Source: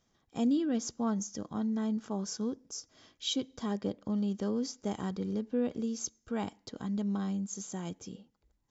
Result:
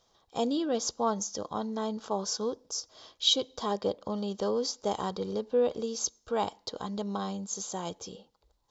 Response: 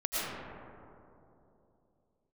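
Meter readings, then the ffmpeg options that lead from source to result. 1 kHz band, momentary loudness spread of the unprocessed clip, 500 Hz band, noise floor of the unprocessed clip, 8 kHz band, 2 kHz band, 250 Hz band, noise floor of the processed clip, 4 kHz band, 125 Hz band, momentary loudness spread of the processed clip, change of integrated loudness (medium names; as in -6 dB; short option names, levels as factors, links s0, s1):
+9.5 dB, 10 LU, +8.0 dB, -75 dBFS, no reading, +2.5 dB, -3.5 dB, -71 dBFS, +9.5 dB, -3.5 dB, 9 LU, +3.0 dB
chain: -af "equalizer=f=125:t=o:w=1:g=-4,equalizer=f=250:t=o:w=1:g=-8,equalizer=f=500:t=o:w=1:g=7,equalizer=f=1000:t=o:w=1:g=8,equalizer=f=2000:t=o:w=1:g=-6,equalizer=f=4000:t=o:w=1:g=10,volume=1.33"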